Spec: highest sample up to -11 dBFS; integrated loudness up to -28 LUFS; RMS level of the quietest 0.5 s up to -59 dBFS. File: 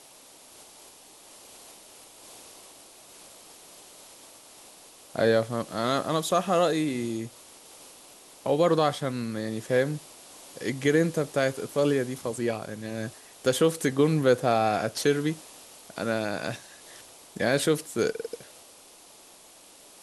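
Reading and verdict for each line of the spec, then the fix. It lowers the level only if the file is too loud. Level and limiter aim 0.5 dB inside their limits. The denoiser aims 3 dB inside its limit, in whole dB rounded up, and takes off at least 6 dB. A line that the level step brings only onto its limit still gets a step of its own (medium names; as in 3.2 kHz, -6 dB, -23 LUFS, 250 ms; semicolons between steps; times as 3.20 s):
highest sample -10.0 dBFS: fail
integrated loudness -27.0 LUFS: fail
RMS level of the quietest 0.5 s -52 dBFS: fail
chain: noise reduction 9 dB, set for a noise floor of -52 dBFS; trim -1.5 dB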